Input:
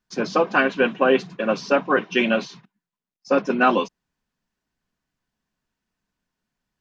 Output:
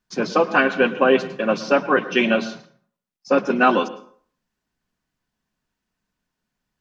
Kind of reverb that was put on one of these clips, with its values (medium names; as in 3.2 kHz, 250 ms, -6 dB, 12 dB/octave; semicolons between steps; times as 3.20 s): plate-style reverb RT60 0.52 s, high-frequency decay 0.65×, pre-delay 95 ms, DRR 15.5 dB; trim +1.5 dB